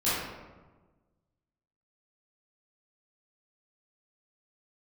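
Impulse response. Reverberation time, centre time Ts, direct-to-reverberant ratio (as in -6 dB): 1.3 s, 91 ms, -13.0 dB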